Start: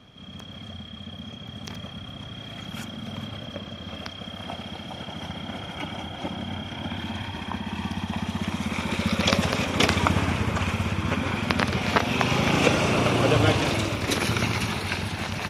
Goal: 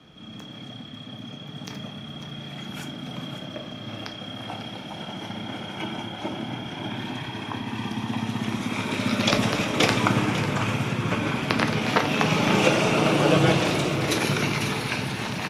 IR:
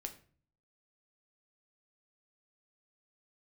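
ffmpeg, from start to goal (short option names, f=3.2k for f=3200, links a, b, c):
-filter_complex "[0:a]aecho=1:1:547:0.251[a];[1:a]atrim=start_sample=2205,atrim=end_sample=3969[b];[a][b]afir=irnorm=-1:irlink=0,afreqshift=31,volume=3.5dB"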